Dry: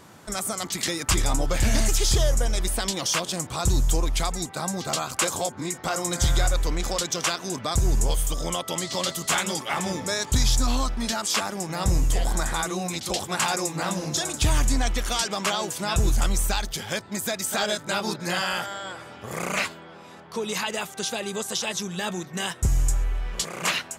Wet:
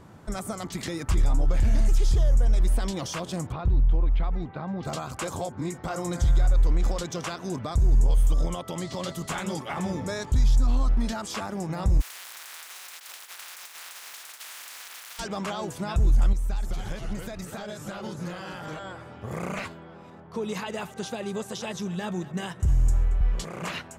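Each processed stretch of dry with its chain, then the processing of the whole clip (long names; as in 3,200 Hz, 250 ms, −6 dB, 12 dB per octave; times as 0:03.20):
0:03.52–0:04.83: low-pass filter 3,200 Hz 24 dB per octave + downward compressor 2 to 1, threshold −30 dBFS
0:12.00–0:15.18: compressing power law on the bin magnitudes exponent 0.14 + high-pass filter 1,400 Hz + downward compressor 12 to 1, threshold −27 dBFS
0:16.33–0:18.79: delay with pitch and tempo change per echo 192 ms, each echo −2 semitones, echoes 3, each echo −6 dB + downward compressor 10 to 1, threshold −29 dBFS
0:20.10–0:23.21: high-pass filter 46 Hz 24 dB per octave + single-tap delay 227 ms −17.5 dB + one half of a high-frequency compander decoder only
whole clip: high-shelf EQ 2,200 Hz −11 dB; brickwall limiter −21 dBFS; low-shelf EQ 130 Hz +11 dB; level −1.5 dB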